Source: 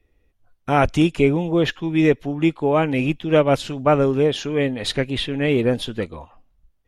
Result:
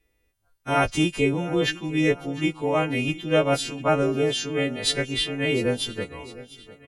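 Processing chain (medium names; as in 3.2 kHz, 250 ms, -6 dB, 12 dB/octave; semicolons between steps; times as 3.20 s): partials quantised in pitch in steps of 2 st; on a send: feedback delay 703 ms, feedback 48%, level -18 dB; on the sum: trim -4.5 dB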